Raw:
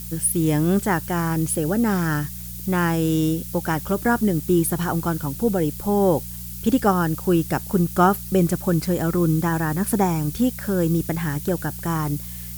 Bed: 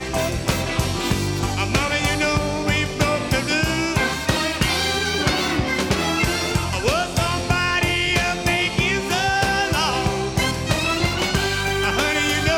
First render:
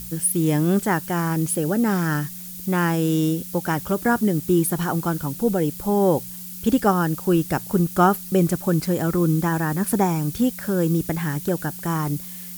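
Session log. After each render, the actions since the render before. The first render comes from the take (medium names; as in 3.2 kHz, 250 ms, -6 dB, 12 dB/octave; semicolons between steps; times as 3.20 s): de-hum 60 Hz, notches 2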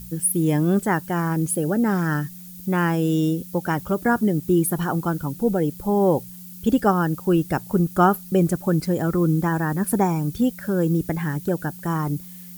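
noise reduction 8 dB, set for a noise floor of -36 dBFS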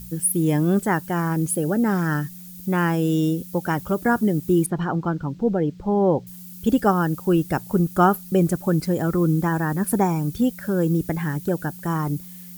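4.66–6.27 s: distance through air 170 m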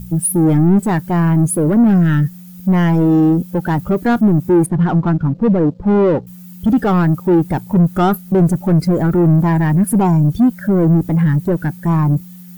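waveshaping leveller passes 5; spectral contrast expander 1.5:1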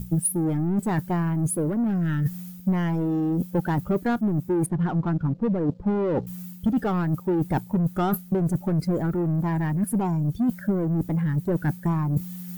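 reverse; compression 10:1, threshold -23 dBFS, peak gain reduction 14.5 dB; reverse; transient shaper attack +6 dB, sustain 0 dB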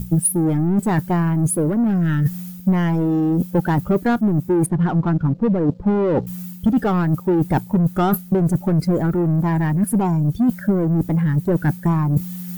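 trim +6 dB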